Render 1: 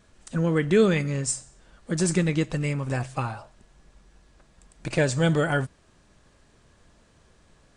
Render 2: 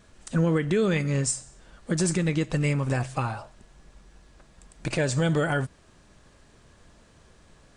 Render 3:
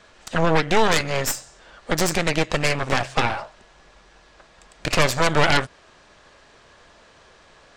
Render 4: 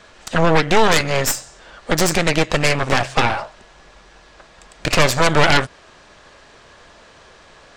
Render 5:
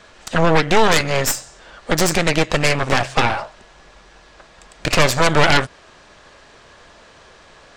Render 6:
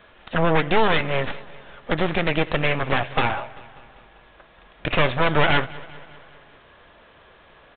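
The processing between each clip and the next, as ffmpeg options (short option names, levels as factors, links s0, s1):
-af "alimiter=limit=0.119:level=0:latency=1:release=195,volume=1.41"
-filter_complex "[0:a]acrossover=split=420 6200:gain=0.2 1 0.141[s0][s1][s2];[s0][s1][s2]amix=inputs=3:normalize=0,aeval=exprs='0.178*(cos(1*acos(clip(val(0)/0.178,-1,1)))-cos(1*PI/2))+0.0631*(cos(3*acos(clip(val(0)/0.178,-1,1)))-cos(3*PI/2))+0.0398*(cos(5*acos(clip(val(0)/0.178,-1,1)))-cos(5*PI/2))+0.0794*(cos(6*acos(clip(val(0)/0.178,-1,1)))-cos(6*PI/2))+0.02*(cos(8*acos(clip(val(0)/0.178,-1,1)))-cos(8*PI/2))':c=same,volume=2.82"
-af "acontrast=33"
-af anull
-af "aecho=1:1:196|392|588|784|980:0.1|0.059|0.0348|0.0205|0.0121,aresample=8000,aresample=44100,volume=0.596"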